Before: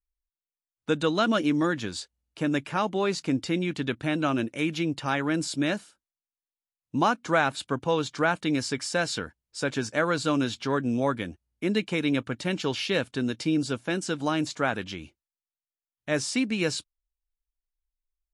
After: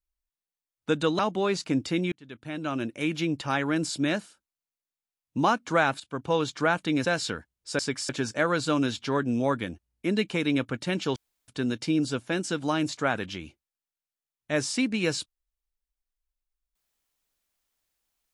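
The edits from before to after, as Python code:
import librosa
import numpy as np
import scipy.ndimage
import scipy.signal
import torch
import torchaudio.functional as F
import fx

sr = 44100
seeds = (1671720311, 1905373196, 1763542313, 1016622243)

y = fx.edit(x, sr, fx.cut(start_s=1.19, length_s=1.58),
    fx.fade_in_span(start_s=3.7, length_s=1.02),
    fx.fade_in_from(start_s=7.58, length_s=0.31, floor_db=-16.5),
    fx.move(start_s=8.63, length_s=0.3, to_s=9.67),
    fx.room_tone_fill(start_s=12.74, length_s=0.32), tone=tone)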